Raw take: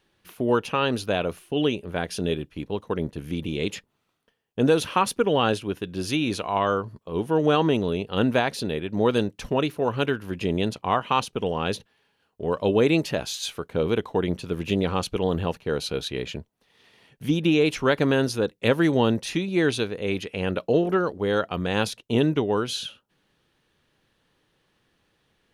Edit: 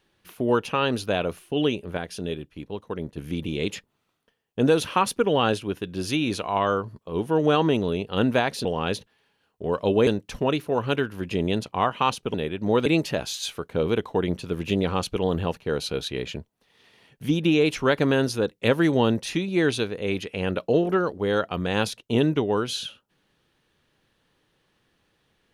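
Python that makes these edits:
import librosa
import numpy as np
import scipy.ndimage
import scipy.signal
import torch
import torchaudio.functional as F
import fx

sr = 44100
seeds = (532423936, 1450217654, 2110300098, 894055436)

y = fx.edit(x, sr, fx.clip_gain(start_s=1.97, length_s=1.2, db=-4.5),
    fx.swap(start_s=8.65, length_s=0.52, other_s=11.44, other_length_s=1.42), tone=tone)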